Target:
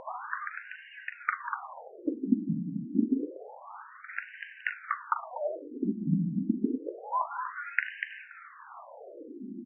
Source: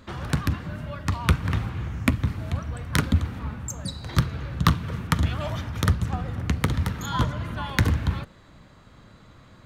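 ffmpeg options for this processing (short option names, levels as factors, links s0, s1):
-af "lowshelf=f=260:g=10,acompressor=mode=upward:threshold=0.112:ratio=2.5,highpass=120,lowpass=2800,aecho=1:1:40.82|242:0.282|0.501,afftfilt=real='re*between(b*sr/1024,230*pow(2200/230,0.5+0.5*sin(2*PI*0.28*pts/sr))/1.41,230*pow(2200/230,0.5+0.5*sin(2*PI*0.28*pts/sr))*1.41)':imag='im*between(b*sr/1024,230*pow(2200/230,0.5+0.5*sin(2*PI*0.28*pts/sr))/1.41,230*pow(2200/230,0.5+0.5*sin(2*PI*0.28*pts/sr))*1.41)':win_size=1024:overlap=0.75"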